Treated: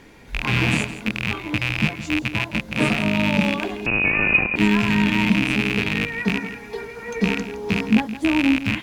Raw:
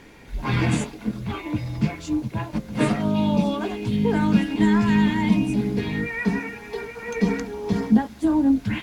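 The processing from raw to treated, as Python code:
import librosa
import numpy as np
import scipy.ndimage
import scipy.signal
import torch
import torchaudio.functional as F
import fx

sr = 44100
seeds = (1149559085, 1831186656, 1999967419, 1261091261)

y = fx.rattle_buzz(x, sr, strikes_db=-29.0, level_db=-10.0)
y = y + 10.0 ** (-13.5 / 20.0) * np.pad(y, (int(166 * sr / 1000.0), 0))[:len(y)]
y = fx.freq_invert(y, sr, carrier_hz=2700, at=(3.86, 4.56))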